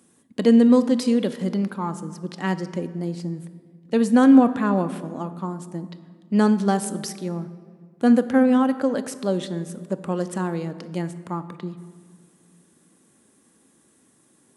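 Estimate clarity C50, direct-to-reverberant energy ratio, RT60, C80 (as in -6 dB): 14.0 dB, 10.0 dB, 1.9 s, 15.0 dB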